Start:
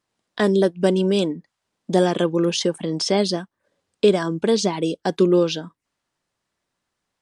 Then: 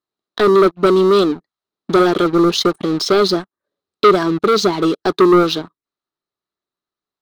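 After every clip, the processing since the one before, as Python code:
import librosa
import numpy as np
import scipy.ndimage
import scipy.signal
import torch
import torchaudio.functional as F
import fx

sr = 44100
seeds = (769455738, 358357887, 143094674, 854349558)

y = fx.peak_eq(x, sr, hz=430.0, db=13.5, octaves=1.1)
y = fx.leveller(y, sr, passes=3)
y = fx.graphic_eq_31(y, sr, hz=(500, 1250, 4000, 8000), db=(-10, 9, 11, -4))
y = F.gain(torch.from_numpy(y), -10.0).numpy()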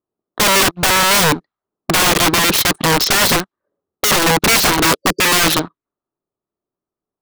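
y = fx.spec_erase(x, sr, start_s=4.98, length_s=0.3, low_hz=540.0, high_hz=4600.0)
y = fx.env_lowpass(y, sr, base_hz=730.0, full_db=-13.0)
y = (np.mod(10.0 ** (14.5 / 20.0) * y + 1.0, 2.0) - 1.0) / 10.0 ** (14.5 / 20.0)
y = F.gain(torch.from_numpy(y), 6.5).numpy()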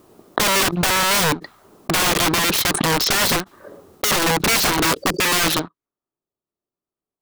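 y = fx.pre_swell(x, sr, db_per_s=33.0)
y = F.gain(torch.from_numpy(y), -5.0).numpy()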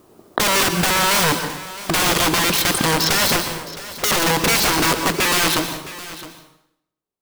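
y = x + 10.0 ** (-16.0 / 20.0) * np.pad(x, (int(664 * sr / 1000.0), 0))[:len(x)]
y = fx.rev_plate(y, sr, seeds[0], rt60_s=0.75, hf_ratio=0.9, predelay_ms=110, drr_db=7.5)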